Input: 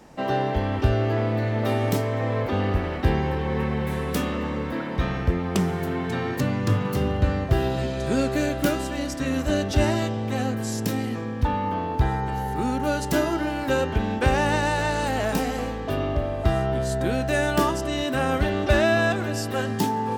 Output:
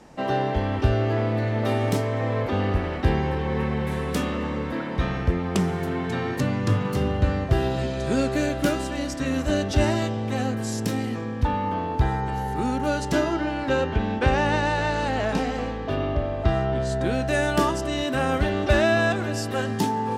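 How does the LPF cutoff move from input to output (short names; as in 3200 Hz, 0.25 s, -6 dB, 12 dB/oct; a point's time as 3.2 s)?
12.77 s 11000 Hz
13.45 s 5200 Hz
16.68 s 5200 Hz
17.35 s 11000 Hz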